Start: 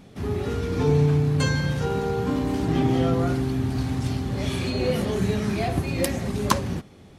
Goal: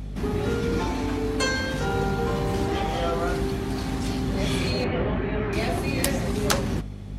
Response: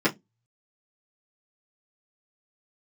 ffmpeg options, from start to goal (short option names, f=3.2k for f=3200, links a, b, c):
-filter_complex "[0:a]asettb=1/sr,asplit=3[a][b][c];[a]atrim=end=4.844[d];[b]atrim=start=4.84:end=5.53,asetpts=PTS-STARTPTS,afade=t=in:d=0.004:c=qsin,afade=t=out:st=0.686:d=0.004:c=qsin,lowpass=f=2.6k:w=0.5412,lowpass=f=2.6k:w=1.3066[e];[c]atrim=start=5.526[f];[d][e]acrossfade=d=0.004:c1=hsin:c2=qsin[g];[g][f]acrossfade=d=0.004:c1=qsin:c2=hsin,afftfilt=real='re*lt(hypot(re,im),0.398)':imag='im*lt(hypot(re,im),0.398)':win_size=1024:overlap=0.75,aeval=exprs='val(0)+0.0178*(sin(2*PI*50*n/s)+sin(2*PI*2*50*n/s)/2+sin(2*PI*3*50*n/s)/3+sin(2*PI*4*50*n/s)/4+sin(2*PI*5*50*n/s)/5)':c=same,flanger=delay=4.4:depth=5.7:regen=-89:speed=0.93:shape=sinusoidal,volume=7.5dB"